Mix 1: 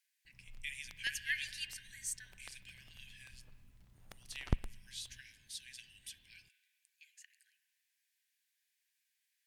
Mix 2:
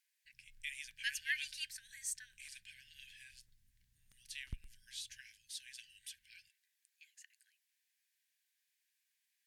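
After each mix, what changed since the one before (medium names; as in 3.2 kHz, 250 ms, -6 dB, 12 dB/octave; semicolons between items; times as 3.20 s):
background: add amplifier tone stack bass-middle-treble 6-0-2; reverb: off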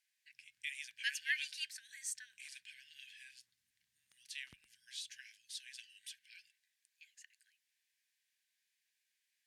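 master: add frequency weighting A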